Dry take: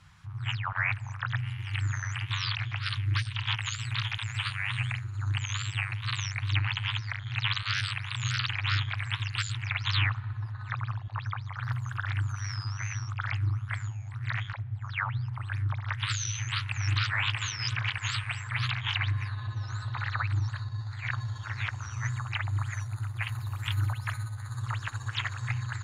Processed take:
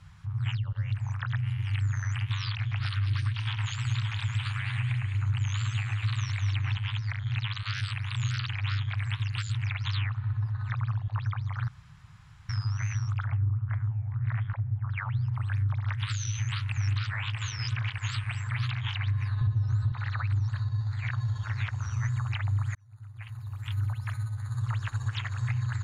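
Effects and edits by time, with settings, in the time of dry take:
0.57–0.95 s: time-frequency box 600–2700 Hz -20 dB
2.70–6.77 s: echo whose repeats swap between lows and highs 104 ms, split 2.1 kHz, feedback 57%, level -2 dB
11.68–12.49 s: room tone
13.24–14.96 s: low-pass 1.1 kHz -> 1.8 kHz
19.41–19.92 s: bass shelf 490 Hz +11.5 dB
22.75–25.02 s: fade in linear
whole clip: peaking EQ 270 Hz -7 dB 0.73 oct; compression, threshold -31 dBFS; bass shelf 440 Hz +9 dB; trim -1.5 dB

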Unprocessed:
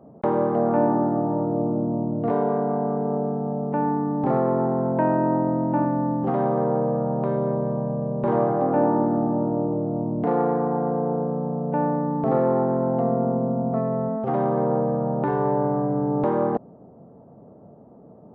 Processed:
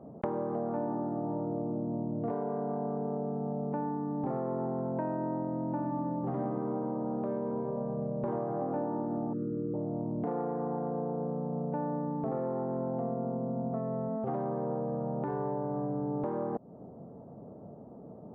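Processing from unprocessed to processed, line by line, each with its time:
5.78–7.52 s: reverb throw, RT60 2.4 s, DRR 2 dB
9.33–9.74 s: elliptic band-stop 510–1300 Hz
whole clip: treble shelf 2.2 kHz -11 dB; compression, threshold -31 dBFS

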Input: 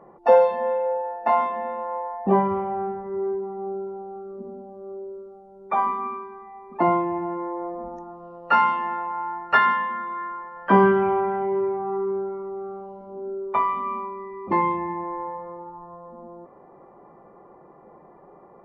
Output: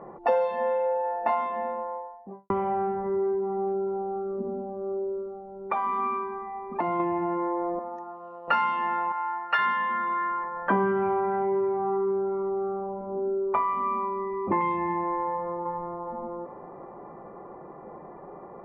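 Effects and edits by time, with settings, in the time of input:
1.02–2.50 s: studio fade out
3.50–7.00 s: compression, threshold -25 dBFS
7.79–8.48 s: high-pass 1.1 kHz 6 dB/octave
9.12–9.59 s: high-pass 1.4 kHz 6 dB/octave
10.44–14.61 s: low-pass 1.8 kHz
15.24–16.05 s: echo throw 410 ms, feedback 30%, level -7.5 dB
whole clip: level-controlled noise filter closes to 2.5 kHz, open at -17.5 dBFS; dynamic bell 2.7 kHz, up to +4 dB, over -40 dBFS, Q 0.8; compression 3:1, threshold -32 dBFS; trim +6 dB

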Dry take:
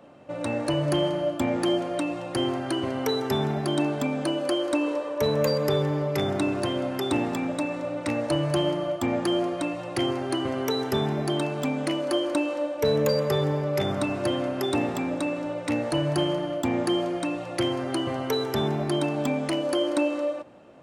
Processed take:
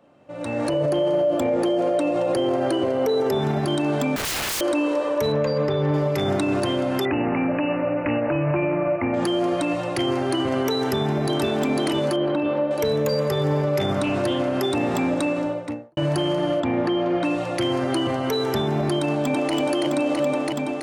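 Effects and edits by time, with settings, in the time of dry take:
0.70–3.39 s: peaking EQ 510 Hz +13 dB 0.92 oct
4.16–4.61 s: integer overflow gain 29.5 dB
5.32–5.94 s: distance through air 170 m
7.05–9.14 s: careless resampling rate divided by 8×, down none, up filtered
10.77–11.42 s: echo throw 500 ms, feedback 45%, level -2 dB
12.16–12.71 s: distance through air 390 m
14.00–14.55 s: loudspeaker Doppler distortion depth 0.12 ms
15.25–15.97 s: studio fade out
16.60–17.24 s: low-pass 3 kHz
19.01–19.53 s: echo throw 330 ms, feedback 75%, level -1 dB
whole clip: peak limiter -22.5 dBFS; level rider gain up to 14 dB; trim -6 dB

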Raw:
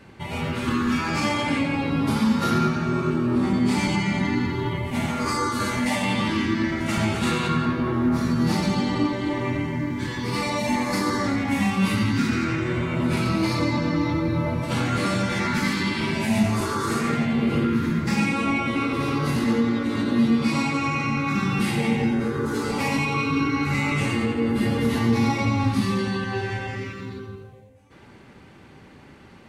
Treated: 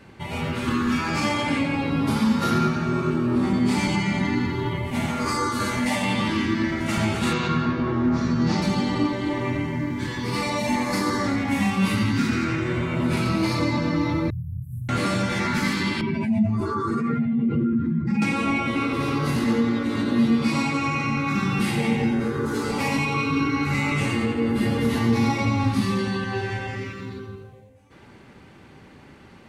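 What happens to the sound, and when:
7.33–8.62 s: Chebyshev low-pass 6.2 kHz, order 3
14.30–14.89 s: inverse Chebyshev band-stop 390–5200 Hz, stop band 60 dB
16.01–18.22 s: spectral contrast enhancement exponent 1.8

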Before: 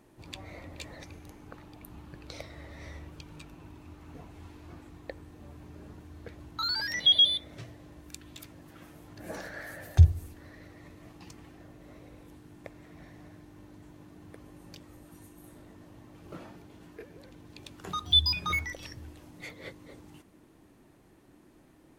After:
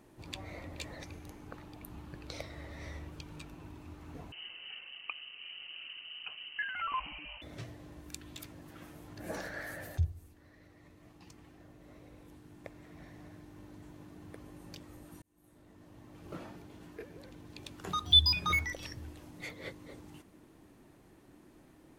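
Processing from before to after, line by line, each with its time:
4.32–7.42 s: frequency inversion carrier 3 kHz
9.97–13.80 s: fade in linear, from -14 dB
15.22–16.29 s: fade in

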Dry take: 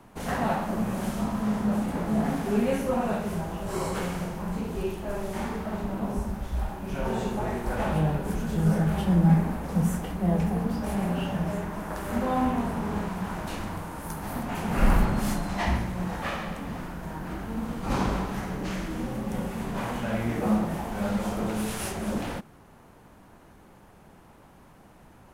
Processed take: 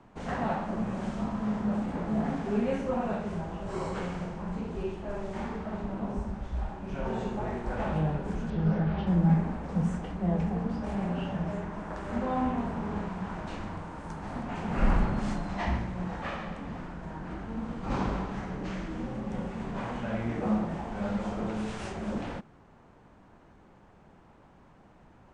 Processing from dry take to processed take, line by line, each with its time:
8.50–9.07 s: low-pass 4.9 kHz 24 dB/octave
whole clip: steep low-pass 8.6 kHz 48 dB/octave; treble shelf 4.9 kHz -11 dB; trim -3.5 dB

